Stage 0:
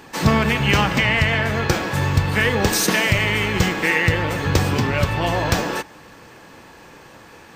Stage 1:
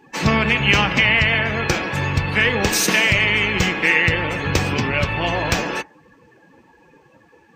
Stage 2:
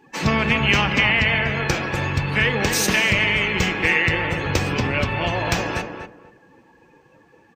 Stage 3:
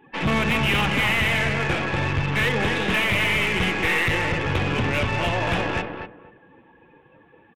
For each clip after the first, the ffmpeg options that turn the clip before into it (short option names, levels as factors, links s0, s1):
-af "afftdn=nr=19:nf=-37,equalizer=f=100:t=o:w=0.67:g=-3,equalizer=f=2500:t=o:w=0.67:g=7,equalizer=f=6300:t=o:w=0.67:g=3,volume=0.891"
-filter_complex "[0:a]asplit=2[s0][s1];[s1]adelay=242,lowpass=f=1400:p=1,volume=0.562,asplit=2[s2][s3];[s3]adelay=242,lowpass=f=1400:p=1,volume=0.22,asplit=2[s4][s5];[s5]adelay=242,lowpass=f=1400:p=1,volume=0.22[s6];[s0][s2][s4][s6]amix=inputs=4:normalize=0,volume=0.75"
-af "aresample=8000,asoftclip=type=hard:threshold=0.133,aresample=44100,aeval=exprs='0.237*(cos(1*acos(clip(val(0)/0.237,-1,1)))-cos(1*PI/2))+0.015*(cos(8*acos(clip(val(0)/0.237,-1,1)))-cos(8*PI/2))':c=same"